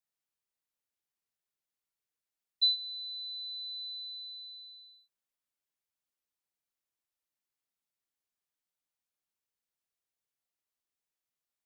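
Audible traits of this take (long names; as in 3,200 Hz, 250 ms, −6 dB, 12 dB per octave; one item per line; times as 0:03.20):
background noise floor −92 dBFS
spectral slope +2.0 dB per octave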